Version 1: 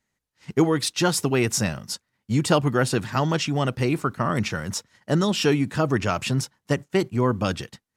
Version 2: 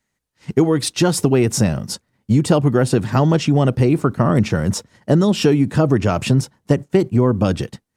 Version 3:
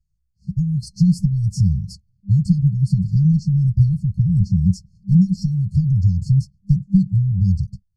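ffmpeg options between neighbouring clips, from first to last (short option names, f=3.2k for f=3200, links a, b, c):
-filter_complex "[0:a]acrossover=split=730[a][b];[a]dynaudnorm=f=150:g=5:m=11.5dB[c];[c][b]amix=inputs=2:normalize=0,equalizer=f=8.9k:t=o:w=0.24:g=3.5,acompressor=threshold=-15dB:ratio=3,volume=3dB"
-af "flanger=delay=2.8:depth=2:regen=22:speed=0.51:shape=triangular,afftfilt=real='re*(1-between(b*sr/4096,200,4200))':imag='im*(1-between(b*sr/4096,200,4200))':win_size=4096:overlap=0.75,aemphasis=mode=reproduction:type=riaa"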